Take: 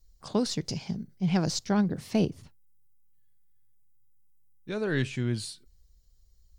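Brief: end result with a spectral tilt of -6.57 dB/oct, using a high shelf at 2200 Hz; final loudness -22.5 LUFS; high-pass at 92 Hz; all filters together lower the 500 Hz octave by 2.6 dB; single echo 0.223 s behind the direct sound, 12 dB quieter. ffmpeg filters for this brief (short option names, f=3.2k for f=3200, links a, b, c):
-af "highpass=92,equalizer=f=500:t=o:g=-3,highshelf=f=2.2k:g=-7.5,aecho=1:1:223:0.251,volume=8.5dB"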